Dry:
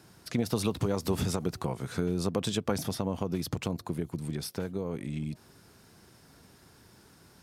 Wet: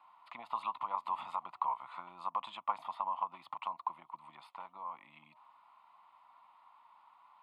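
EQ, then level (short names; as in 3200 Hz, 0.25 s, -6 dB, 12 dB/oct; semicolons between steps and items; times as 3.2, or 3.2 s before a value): ladder band-pass 1100 Hz, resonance 70%; fixed phaser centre 1600 Hz, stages 6; +10.5 dB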